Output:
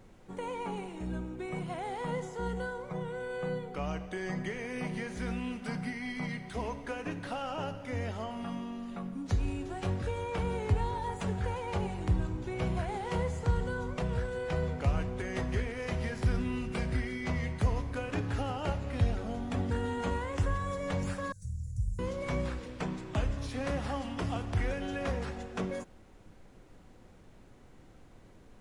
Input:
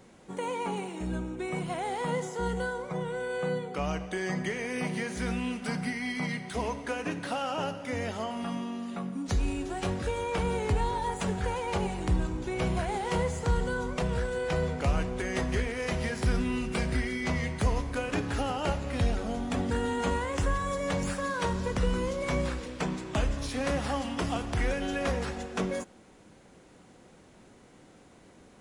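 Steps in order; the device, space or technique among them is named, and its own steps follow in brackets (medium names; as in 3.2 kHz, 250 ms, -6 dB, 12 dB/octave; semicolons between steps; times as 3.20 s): car interior (peaking EQ 100 Hz +8.5 dB 0.66 oct; treble shelf 4.9 kHz -6.5 dB; brown noise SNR 23 dB); 21.32–21.99 s: elliptic band-stop 120–7100 Hz, stop band 40 dB; trim -4.5 dB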